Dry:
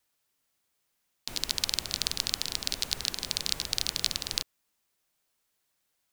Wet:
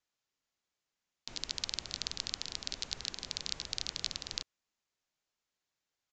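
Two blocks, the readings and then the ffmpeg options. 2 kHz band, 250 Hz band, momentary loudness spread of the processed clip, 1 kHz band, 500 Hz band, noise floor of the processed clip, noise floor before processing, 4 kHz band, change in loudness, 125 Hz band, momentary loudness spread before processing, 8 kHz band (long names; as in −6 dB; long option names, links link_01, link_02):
−7.5 dB, −7.5 dB, 5 LU, −7.5 dB, −7.5 dB, below −85 dBFS, −78 dBFS, −7.5 dB, −8.0 dB, −7.5 dB, 5 LU, −9.0 dB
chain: -af "aresample=16000,aresample=44100,volume=-7.5dB"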